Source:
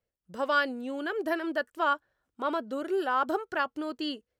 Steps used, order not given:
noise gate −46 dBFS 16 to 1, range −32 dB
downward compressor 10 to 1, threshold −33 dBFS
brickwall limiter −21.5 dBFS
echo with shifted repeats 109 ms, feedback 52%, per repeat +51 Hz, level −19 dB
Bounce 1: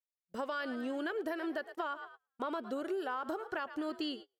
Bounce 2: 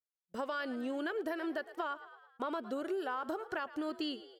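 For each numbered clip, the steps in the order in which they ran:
echo with shifted repeats, then brickwall limiter, then downward compressor, then noise gate
brickwall limiter, then noise gate, then echo with shifted repeats, then downward compressor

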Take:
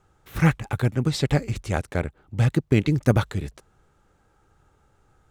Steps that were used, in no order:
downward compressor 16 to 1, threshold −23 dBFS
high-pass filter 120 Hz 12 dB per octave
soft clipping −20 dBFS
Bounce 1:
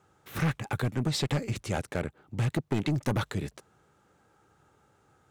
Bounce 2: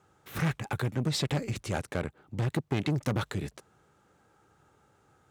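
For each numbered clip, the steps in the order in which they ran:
high-pass filter, then soft clipping, then downward compressor
soft clipping, then downward compressor, then high-pass filter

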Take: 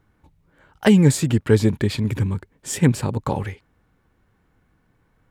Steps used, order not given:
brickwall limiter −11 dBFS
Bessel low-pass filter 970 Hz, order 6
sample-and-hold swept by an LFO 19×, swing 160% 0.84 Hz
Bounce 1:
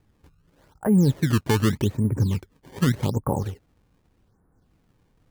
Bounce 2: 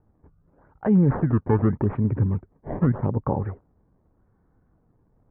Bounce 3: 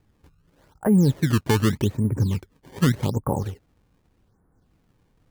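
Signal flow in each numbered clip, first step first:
brickwall limiter, then Bessel low-pass filter, then sample-and-hold swept by an LFO
sample-and-hold swept by an LFO, then brickwall limiter, then Bessel low-pass filter
Bessel low-pass filter, then sample-and-hold swept by an LFO, then brickwall limiter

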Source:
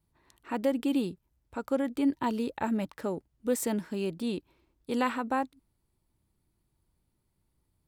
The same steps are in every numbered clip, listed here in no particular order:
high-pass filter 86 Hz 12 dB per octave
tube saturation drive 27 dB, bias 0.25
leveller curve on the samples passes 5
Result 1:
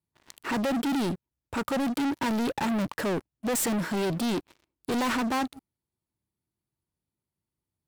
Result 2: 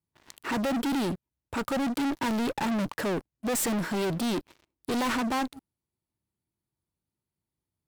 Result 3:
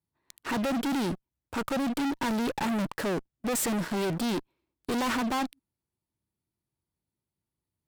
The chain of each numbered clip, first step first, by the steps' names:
tube saturation, then high-pass filter, then leveller curve on the samples
high-pass filter, then tube saturation, then leveller curve on the samples
high-pass filter, then leveller curve on the samples, then tube saturation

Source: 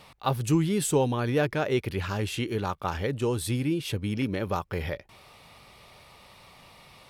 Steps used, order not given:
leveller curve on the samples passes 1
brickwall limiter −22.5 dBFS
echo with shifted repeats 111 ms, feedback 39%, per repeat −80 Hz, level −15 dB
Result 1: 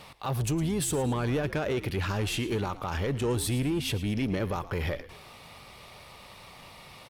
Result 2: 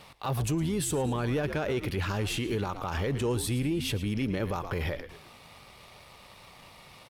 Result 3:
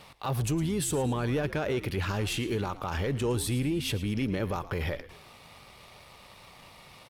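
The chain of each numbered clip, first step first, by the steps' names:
brickwall limiter, then leveller curve on the samples, then echo with shifted repeats
leveller curve on the samples, then echo with shifted repeats, then brickwall limiter
leveller curve on the samples, then brickwall limiter, then echo with shifted repeats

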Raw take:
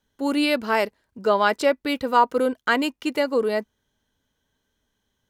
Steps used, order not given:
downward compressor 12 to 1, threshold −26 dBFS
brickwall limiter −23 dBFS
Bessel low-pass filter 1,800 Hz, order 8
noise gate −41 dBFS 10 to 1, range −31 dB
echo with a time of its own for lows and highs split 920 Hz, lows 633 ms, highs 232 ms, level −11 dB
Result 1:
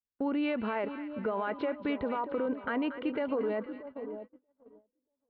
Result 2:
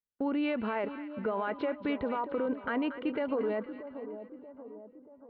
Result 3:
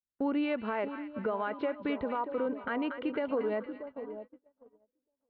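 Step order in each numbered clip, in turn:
Bessel low-pass filter, then brickwall limiter, then echo with a time of its own for lows and highs, then noise gate, then downward compressor
Bessel low-pass filter, then noise gate, then brickwall limiter, then downward compressor, then echo with a time of its own for lows and highs
downward compressor, then echo with a time of its own for lows and highs, then noise gate, then Bessel low-pass filter, then brickwall limiter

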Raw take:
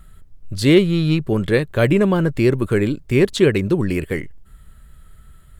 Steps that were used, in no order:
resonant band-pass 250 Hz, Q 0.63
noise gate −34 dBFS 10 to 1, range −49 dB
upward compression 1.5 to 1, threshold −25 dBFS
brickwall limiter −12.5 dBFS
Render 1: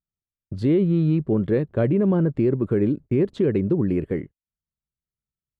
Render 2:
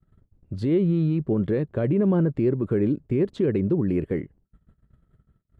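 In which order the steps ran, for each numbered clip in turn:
resonant band-pass, then upward compression, then noise gate, then brickwall limiter
upward compression, then noise gate, then brickwall limiter, then resonant band-pass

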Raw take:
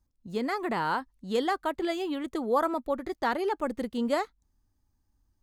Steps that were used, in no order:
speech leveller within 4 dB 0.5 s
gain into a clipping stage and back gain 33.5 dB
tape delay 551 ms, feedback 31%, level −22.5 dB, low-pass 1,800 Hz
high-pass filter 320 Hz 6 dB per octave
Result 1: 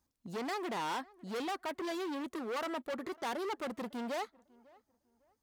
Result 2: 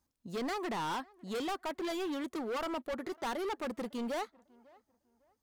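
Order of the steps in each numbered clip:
tape delay, then speech leveller, then gain into a clipping stage and back, then high-pass filter
speech leveller, then tape delay, then high-pass filter, then gain into a clipping stage and back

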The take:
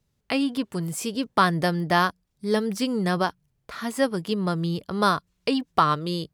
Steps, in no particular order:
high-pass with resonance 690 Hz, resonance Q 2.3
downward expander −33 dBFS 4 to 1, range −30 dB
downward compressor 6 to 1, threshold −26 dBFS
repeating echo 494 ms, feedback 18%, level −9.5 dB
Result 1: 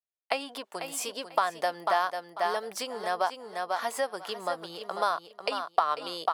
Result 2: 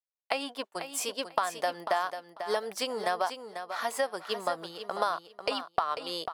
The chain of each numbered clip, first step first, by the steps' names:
downward expander, then repeating echo, then downward compressor, then high-pass with resonance
high-pass with resonance, then downward expander, then downward compressor, then repeating echo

